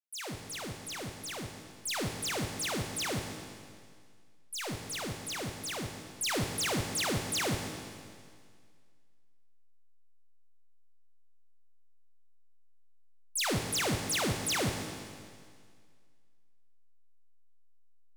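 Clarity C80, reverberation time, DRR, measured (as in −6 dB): 6.0 dB, 2.0 s, 4.0 dB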